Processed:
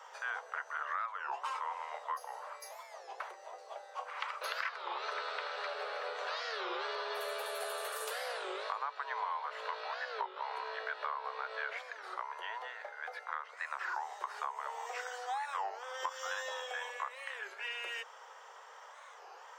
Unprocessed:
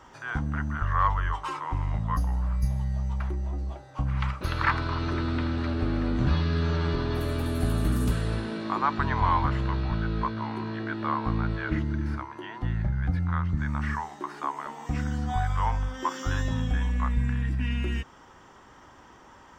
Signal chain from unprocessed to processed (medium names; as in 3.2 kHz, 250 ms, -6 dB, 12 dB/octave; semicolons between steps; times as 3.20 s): steep high-pass 440 Hz 96 dB/octave; compression 10:1, threshold -34 dBFS, peak gain reduction 15.5 dB; warped record 33 1/3 rpm, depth 250 cents